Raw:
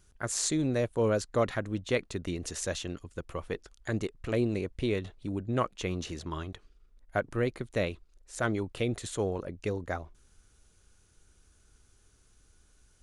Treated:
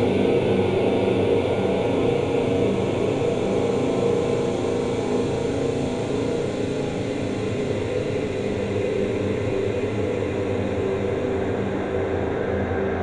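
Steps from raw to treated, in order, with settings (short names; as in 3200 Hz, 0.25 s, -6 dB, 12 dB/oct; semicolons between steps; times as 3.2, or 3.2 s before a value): regenerating reverse delay 0.274 s, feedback 42%, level -3 dB; low-pass opened by the level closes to 1300 Hz, open at -23 dBFS; spring tank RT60 1.4 s, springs 36 ms, chirp 25 ms, DRR 1.5 dB; Paulstretch 22×, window 0.50 s, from 9.27; gain +6.5 dB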